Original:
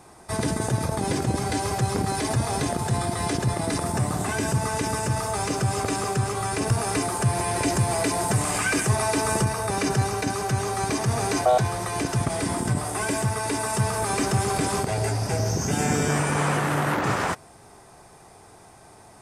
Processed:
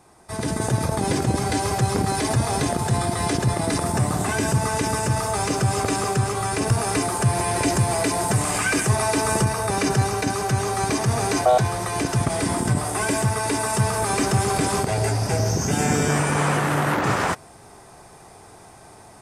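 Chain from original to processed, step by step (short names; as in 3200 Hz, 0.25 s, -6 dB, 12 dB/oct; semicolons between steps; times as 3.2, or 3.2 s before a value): AGC gain up to 8 dB; gain -4.5 dB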